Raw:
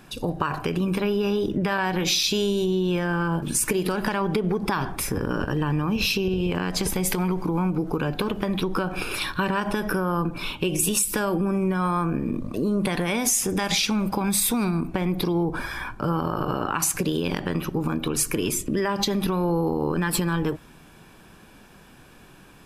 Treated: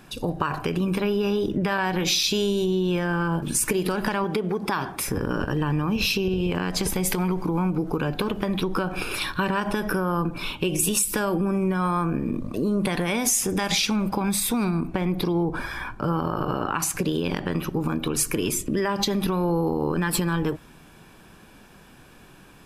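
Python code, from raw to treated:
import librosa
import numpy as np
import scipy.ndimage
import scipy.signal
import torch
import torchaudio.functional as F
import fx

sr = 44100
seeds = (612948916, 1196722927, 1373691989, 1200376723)

y = fx.highpass(x, sr, hz=200.0, slope=6, at=(4.24, 5.07))
y = fx.high_shelf(y, sr, hz=5200.0, db=-4.0, at=(13.96, 17.52))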